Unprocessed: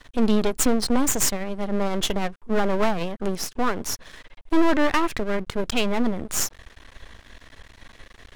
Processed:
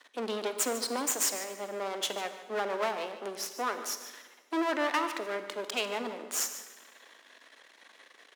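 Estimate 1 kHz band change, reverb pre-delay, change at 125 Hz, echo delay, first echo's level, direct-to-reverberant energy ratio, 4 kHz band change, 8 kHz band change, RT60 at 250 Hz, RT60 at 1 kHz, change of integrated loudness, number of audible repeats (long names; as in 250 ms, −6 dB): −6.0 dB, 34 ms, below −20 dB, 147 ms, −14.0 dB, 8.5 dB, −5.5 dB, −5.5 dB, 1.5 s, 1.3 s, −8.0 dB, 1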